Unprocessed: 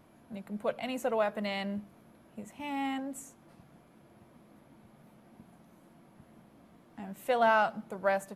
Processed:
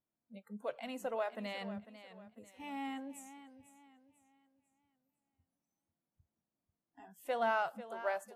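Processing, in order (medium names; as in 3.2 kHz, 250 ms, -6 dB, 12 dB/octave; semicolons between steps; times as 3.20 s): spectral noise reduction 27 dB; modulated delay 496 ms, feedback 36%, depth 84 cents, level -13.5 dB; trim -7.5 dB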